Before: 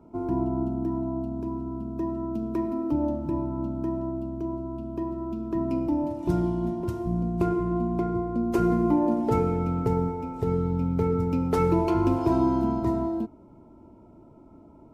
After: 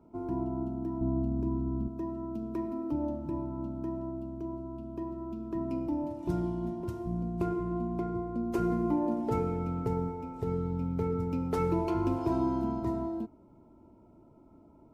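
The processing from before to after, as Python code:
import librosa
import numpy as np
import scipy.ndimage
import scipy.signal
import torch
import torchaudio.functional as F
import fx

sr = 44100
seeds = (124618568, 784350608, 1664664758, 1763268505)

y = fx.low_shelf(x, sr, hz=300.0, db=11.5, at=(1.01, 1.88))
y = y * librosa.db_to_amplitude(-6.5)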